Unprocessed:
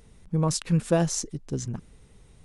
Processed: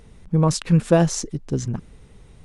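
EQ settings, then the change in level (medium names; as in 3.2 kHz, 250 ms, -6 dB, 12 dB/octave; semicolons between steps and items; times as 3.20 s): treble shelf 5.7 kHz -8 dB; +6.5 dB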